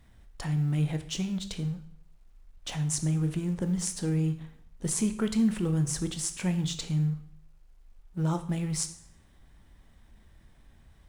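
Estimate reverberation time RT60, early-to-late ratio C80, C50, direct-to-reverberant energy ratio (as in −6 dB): 0.65 s, 15.0 dB, 12.0 dB, 8.0 dB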